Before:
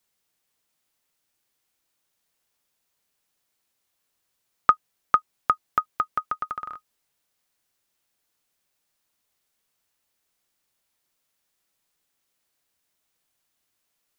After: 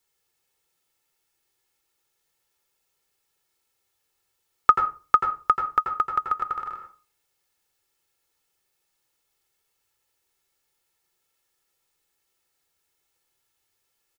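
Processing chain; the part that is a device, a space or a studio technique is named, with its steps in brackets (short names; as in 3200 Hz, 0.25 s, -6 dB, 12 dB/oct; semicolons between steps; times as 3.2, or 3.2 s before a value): microphone above a desk (comb 2.3 ms, depth 54%; reverb RT60 0.35 s, pre-delay 82 ms, DRR 3.5 dB); gain -1 dB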